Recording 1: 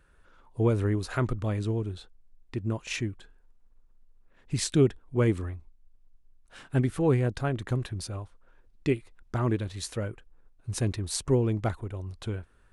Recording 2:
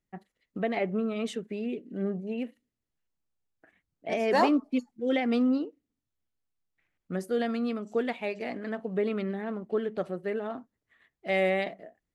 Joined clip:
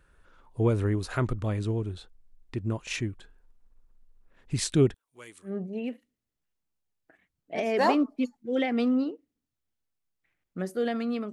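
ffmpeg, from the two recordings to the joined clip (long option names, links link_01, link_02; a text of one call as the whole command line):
ffmpeg -i cue0.wav -i cue1.wav -filter_complex "[0:a]asettb=1/sr,asplit=3[link_01][link_02][link_03];[link_01]atrim=end=4.944[link_04];[link_02]atrim=start=4.94:end=5.58,asetpts=PTS-STARTPTS,afade=type=in:duration=0.004:curve=qsin,afade=type=out:start_time=0.636:duration=0.004:curve=qsin,aderivative[link_05];[link_03]atrim=start=5.576[link_06];[link_04][link_05]acrossfade=duration=0.004:curve1=hsin:curve2=qsin[link_07];[link_07][link_06]acrossfade=duration=0.004:curve1=qsin:curve2=hsin,apad=whole_dur=11.32,atrim=end=11.32,atrim=end=5.58,asetpts=PTS-STARTPTS[link_08];[1:a]atrim=start=1.96:end=7.86,asetpts=PTS-STARTPTS[link_09];[link_08][link_09]acrossfade=duration=0.16:curve1=tri:curve2=tri" out.wav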